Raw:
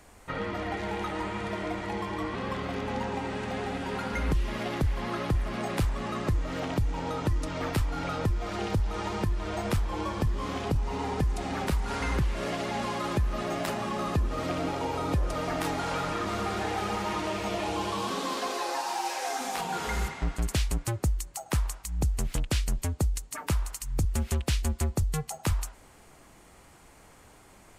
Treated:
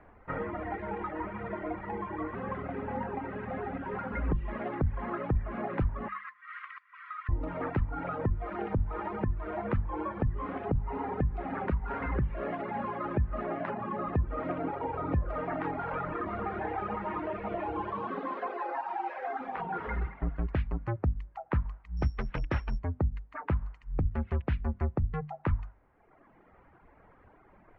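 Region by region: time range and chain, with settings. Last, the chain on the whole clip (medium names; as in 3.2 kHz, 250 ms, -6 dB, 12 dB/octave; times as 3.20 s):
6.08–7.29 s: brick-wall FIR high-pass 1 kHz + peaking EQ 2 kHz +7.5 dB 0.22 oct
21.97–22.79 s: careless resampling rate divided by 8×, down none, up zero stuff + hum notches 50/100/150/200/250/300 Hz
whole clip: reverb removal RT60 1.4 s; low-pass 1.9 kHz 24 dB/octave; hum notches 50/100/150/200/250 Hz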